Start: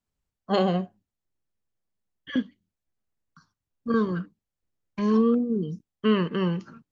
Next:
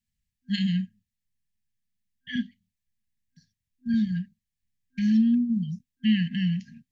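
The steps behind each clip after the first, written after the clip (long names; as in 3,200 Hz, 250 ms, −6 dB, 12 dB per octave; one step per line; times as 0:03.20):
brick-wall band-stop 250–1,600 Hz
level +1.5 dB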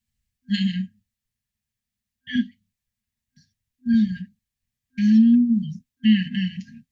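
dynamic equaliser 320 Hz, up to +8 dB, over −44 dBFS, Q 3.4
notch comb filter 170 Hz
level +5 dB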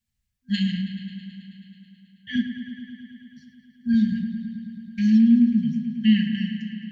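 fade-out on the ending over 0.81 s
delay with a low-pass on its return 108 ms, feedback 80%, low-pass 3,800 Hz, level −9.5 dB
level −1.5 dB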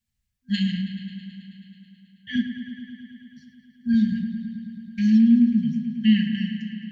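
no processing that can be heard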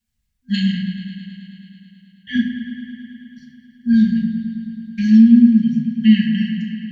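rectangular room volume 600 cubic metres, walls furnished, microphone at 1.8 metres
level +2.5 dB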